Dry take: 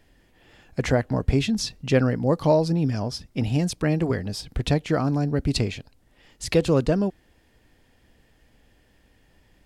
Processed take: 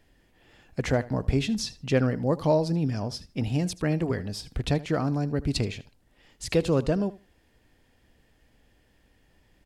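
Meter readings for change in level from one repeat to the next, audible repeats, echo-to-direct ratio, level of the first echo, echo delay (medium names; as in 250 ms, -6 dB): -15.5 dB, 2, -18.5 dB, -18.5 dB, 78 ms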